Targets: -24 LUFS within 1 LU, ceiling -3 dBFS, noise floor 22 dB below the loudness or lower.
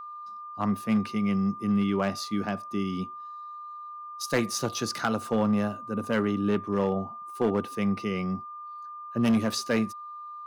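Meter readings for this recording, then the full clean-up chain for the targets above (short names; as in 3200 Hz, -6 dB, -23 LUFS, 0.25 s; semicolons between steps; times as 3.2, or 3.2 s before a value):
clipped 0.8%; flat tops at -18.0 dBFS; steady tone 1200 Hz; tone level -38 dBFS; loudness -28.5 LUFS; peak -18.0 dBFS; loudness target -24.0 LUFS
-> clip repair -18 dBFS; notch 1200 Hz, Q 30; gain +4.5 dB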